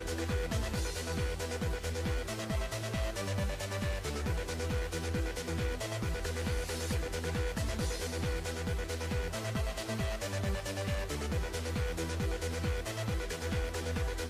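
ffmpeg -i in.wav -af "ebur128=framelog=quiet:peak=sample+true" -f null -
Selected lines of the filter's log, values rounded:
Integrated loudness:
  I:         -35.7 LUFS
  Threshold: -45.7 LUFS
Loudness range:
  LRA:         0.3 LU
  Threshold: -55.7 LUFS
  LRA low:   -35.9 LUFS
  LRA high:  -35.6 LUFS
Sample peak:
  Peak:      -21.2 dBFS
True peak:
  Peak:      -21.2 dBFS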